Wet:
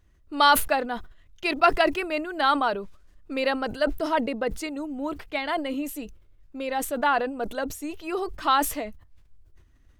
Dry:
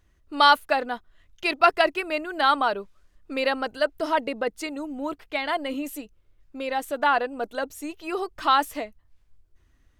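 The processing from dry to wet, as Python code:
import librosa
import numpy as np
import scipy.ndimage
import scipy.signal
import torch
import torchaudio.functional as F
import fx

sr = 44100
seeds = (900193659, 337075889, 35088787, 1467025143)

y = fx.low_shelf(x, sr, hz=360.0, db=4.5)
y = fx.sustainer(y, sr, db_per_s=99.0)
y = y * 10.0 ** (-2.0 / 20.0)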